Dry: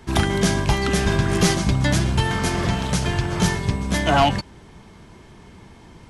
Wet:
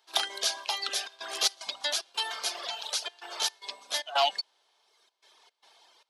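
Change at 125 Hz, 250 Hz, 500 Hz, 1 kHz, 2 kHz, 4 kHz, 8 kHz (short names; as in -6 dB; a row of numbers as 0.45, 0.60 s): under -40 dB, -36.5 dB, -14.0 dB, -10.0 dB, -11.5 dB, -1.0 dB, -5.0 dB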